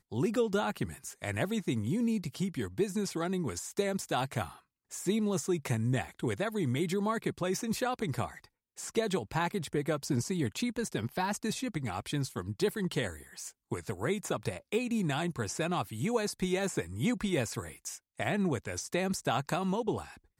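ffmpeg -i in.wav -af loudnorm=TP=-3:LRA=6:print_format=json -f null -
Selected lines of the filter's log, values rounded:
"input_i" : "-33.4",
"input_tp" : "-17.2",
"input_lra" : "1.7",
"input_thresh" : "-43.5",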